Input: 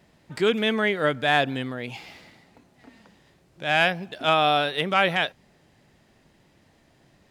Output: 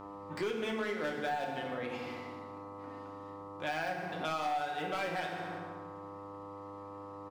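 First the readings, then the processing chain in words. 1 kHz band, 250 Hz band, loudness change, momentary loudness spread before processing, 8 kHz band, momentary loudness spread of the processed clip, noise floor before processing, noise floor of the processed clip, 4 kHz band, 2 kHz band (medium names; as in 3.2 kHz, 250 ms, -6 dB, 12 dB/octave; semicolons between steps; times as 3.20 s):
-10.5 dB, -11.0 dB, -15.0 dB, 12 LU, -7.0 dB, 12 LU, -61 dBFS, -47 dBFS, -17.5 dB, -14.0 dB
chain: de-esser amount 70%; peaking EQ 85 Hz -11 dB 2.6 oct; Chebyshev shaper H 7 -25 dB, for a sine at -9 dBFS; treble shelf 2.3 kHz -8.5 dB; comb 5.5 ms, depth 32%; hard clipper -21.5 dBFS, distortion -11 dB; de-hum 50.2 Hz, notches 4; mains buzz 100 Hz, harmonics 13, -51 dBFS 0 dB/octave; FDN reverb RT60 1.3 s, low-frequency decay 1.6×, high-frequency decay 0.7×, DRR 0 dB; compression 4:1, threshold -36 dBFS, peak gain reduction 16 dB; trim +1.5 dB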